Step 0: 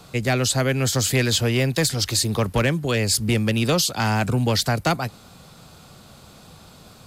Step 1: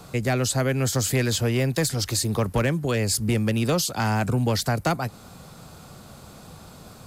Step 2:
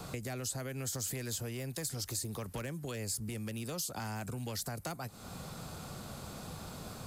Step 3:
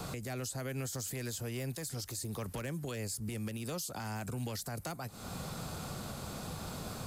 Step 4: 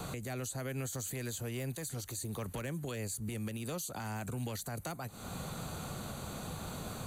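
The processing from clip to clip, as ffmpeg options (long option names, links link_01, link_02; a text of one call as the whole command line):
ffmpeg -i in.wav -filter_complex "[0:a]asplit=2[link_01][link_02];[link_02]acompressor=threshold=-29dB:ratio=6,volume=2dB[link_03];[link_01][link_03]amix=inputs=2:normalize=0,equalizer=frequency=3400:width=0.95:gain=-5.5,volume=-4.5dB" out.wav
ffmpeg -i in.wav -filter_complex "[0:a]alimiter=limit=-21.5dB:level=0:latency=1:release=338,acrossover=split=1600|6200[link_01][link_02][link_03];[link_01]acompressor=threshold=-40dB:ratio=4[link_04];[link_02]acompressor=threshold=-50dB:ratio=4[link_05];[link_03]acompressor=threshold=-36dB:ratio=4[link_06];[link_04][link_05][link_06]amix=inputs=3:normalize=0" out.wav
ffmpeg -i in.wav -af "alimiter=level_in=10dB:limit=-24dB:level=0:latency=1:release=154,volume=-10dB,volume=3.5dB" out.wav
ffmpeg -i in.wav -af "asuperstop=centerf=5200:order=4:qfactor=5.1" out.wav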